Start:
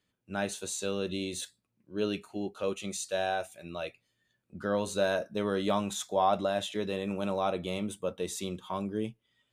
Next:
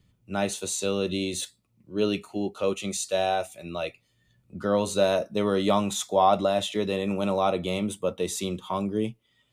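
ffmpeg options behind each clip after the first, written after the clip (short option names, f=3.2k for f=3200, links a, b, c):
-filter_complex "[0:a]bandreject=f=1.6k:w=6,acrossover=split=150|3200[a][b][c];[a]acompressor=mode=upward:threshold=-56dB:ratio=2.5[d];[d][b][c]amix=inputs=3:normalize=0,volume=6dB"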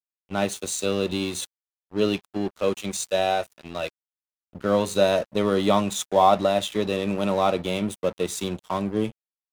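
-af "aeval=exprs='sgn(val(0))*max(abs(val(0))-0.0106,0)':c=same,volume=3.5dB"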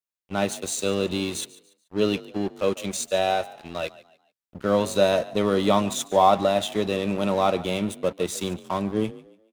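-filter_complex "[0:a]asplit=4[a][b][c][d];[b]adelay=144,afreqshift=39,volume=-19dB[e];[c]adelay=288,afreqshift=78,volume=-28.4dB[f];[d]adelay=432,afreqshift=117,volume=-37.7dB[g];[a][e][f][g]amix=inputs=4:normalize=0"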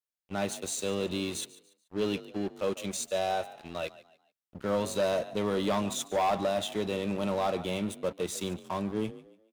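-af "asoftclip=type=tanh:threshold=-17.5dB,volume=-4.5dB"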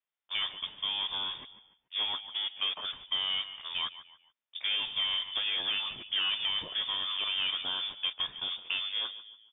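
-filter_complex "[0:a]acrossover=split=430|1300[a][b][c];[a]acompressor=threshold=-43dB:ratio=4[d];[b]acompressor=threshold=-39dB:ratio=4[e];[c]acompressor=threshold=-42dB:ratio=4[f];[d][e][f]amix=inputs=3:normalize=0,lowpass=f=3.1k:t=q:w=0.5098,lowpass=f=3.1k:t=q:w=0.6013,lowpass=f=3.1k:t=q:w=0.9,lowpass=f=3.1k:t=q:w=2.563,afreqshift=-3700,volume=5dB"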